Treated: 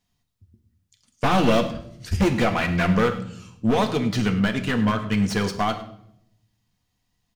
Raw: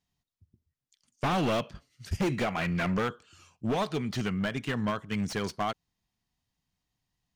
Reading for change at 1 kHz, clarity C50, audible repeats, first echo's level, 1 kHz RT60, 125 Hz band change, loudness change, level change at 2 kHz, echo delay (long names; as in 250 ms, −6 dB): +7.5 dB, 11.5 dB, 1, −16.5 dB, 0.60 s, +8.5 dB, +8.0 dB, +8.0 dB, 103 ms